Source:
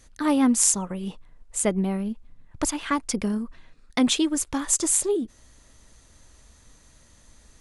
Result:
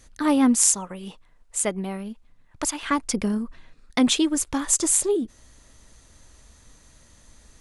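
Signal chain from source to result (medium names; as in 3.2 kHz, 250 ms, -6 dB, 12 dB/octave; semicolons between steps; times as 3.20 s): 0.55–2.83 s: bass shelf 420 Hz -9 dB; trim +1.5 dB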